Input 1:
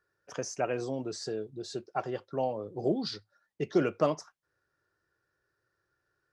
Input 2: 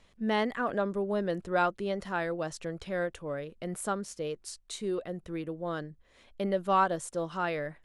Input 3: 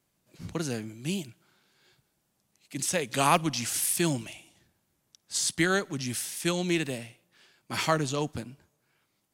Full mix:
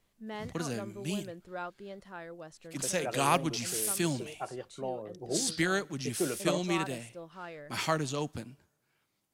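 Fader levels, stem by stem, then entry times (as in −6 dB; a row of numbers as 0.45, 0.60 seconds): −6.0, −12.5, −4.0 decibels; 2.45, 0.00, 0.00 seconds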